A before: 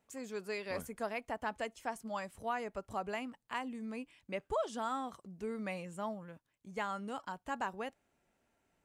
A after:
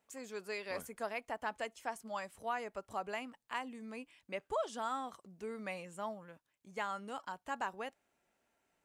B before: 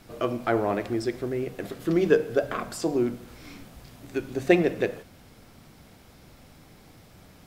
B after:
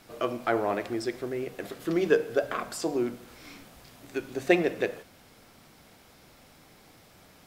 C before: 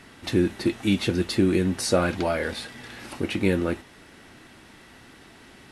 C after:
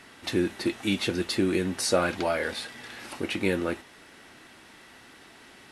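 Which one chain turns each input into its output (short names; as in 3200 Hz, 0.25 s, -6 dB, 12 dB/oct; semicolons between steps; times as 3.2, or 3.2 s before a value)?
low shelf 250 Hz -10 dB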